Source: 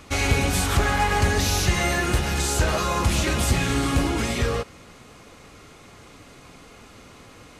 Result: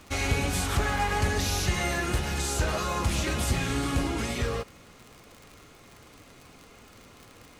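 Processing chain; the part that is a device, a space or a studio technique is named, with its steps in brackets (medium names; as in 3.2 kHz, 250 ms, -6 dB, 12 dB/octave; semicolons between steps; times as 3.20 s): vinyl LP (wow and flutter 22 cents; crackle 71 per s -32 dBFS; pink noise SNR 35 dB); trim -5.5 dB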